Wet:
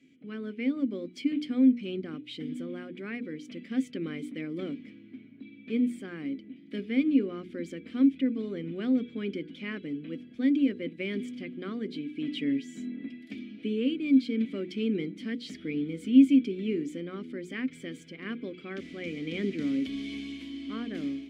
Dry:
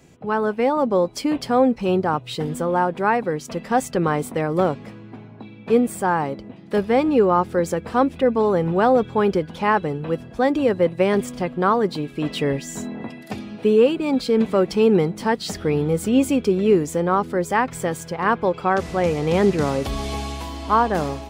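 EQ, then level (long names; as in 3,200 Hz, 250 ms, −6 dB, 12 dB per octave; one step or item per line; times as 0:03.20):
formant filter i
high-shelf EQ 5,300 Hz +7 dB
mains-hum notches 60/120/180/240/300/360/420/480 Hz
+1.5 dB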